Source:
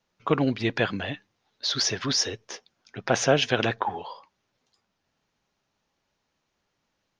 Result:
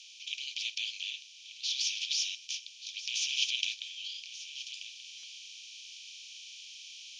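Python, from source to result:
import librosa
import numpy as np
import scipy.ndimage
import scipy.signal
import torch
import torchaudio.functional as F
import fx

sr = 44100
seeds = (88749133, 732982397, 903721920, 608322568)

y = fx.bin_compress(x, sr, power=0.4)
y = fx.rider(y, sr, range_db=10, speed_s=2.0)
y = scipy.signal.sosfilt(scipy.signal.cheby1(6, 6, 2300.0, 'highpass', fs=sr, output='sos'), y)
y = fx.air_absorb(y, sr, metres=51.0)
y = y + 10.0 ** (-13.0 / 20.0) * np.pad(y, (int(1182 * sr / 1000.0), 0))[:len(y)]
y = fx.buffer_glitch(y, sr, at_s=(5.18,), block=256, repeats=8)
y = y * 10.0 ** (-4.5 / 20.0)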